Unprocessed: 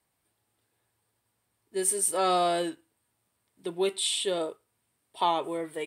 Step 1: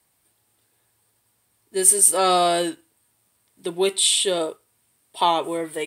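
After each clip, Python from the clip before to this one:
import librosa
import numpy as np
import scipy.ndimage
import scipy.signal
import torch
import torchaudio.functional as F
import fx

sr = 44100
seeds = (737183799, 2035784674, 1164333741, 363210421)

y = fx.high_shelf(x, sr, hz=4200.0, db=7.0)
y = F.gain(torch.from_numpy(y), 6.0).numpy()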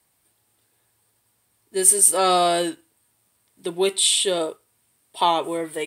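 y = x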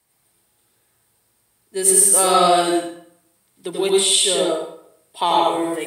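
y = fx.rev_plate(x, sr, seeds[0], rt60_s=0.67, hf_ratio=0.75, predelay_ms=75, drr_db=-2.5)
y = F.gain(torch.from_numpy(y), -1.0).numpy()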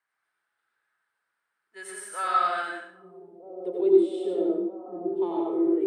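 y = fx.echo_stepped(x, sr, ms=630, hz=170.0, octaves=0.7, feedback_pct=70, wet_db=-0.5)
y = fx.filter_sweep_bandpass(y, sr, from_hz=1500.0, to_hz=330.0, start_s=2.9, end_s=4.03, q=4.2)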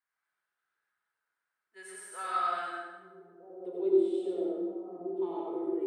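y = fx.rev_plate(x, sr, seeds[1], rt60_s=1.2, hf_ratio=0.7, predelay_ms=0, drr_db=2.5)
y = F.gain(torch.from_numpy(y), -8.5).numpy()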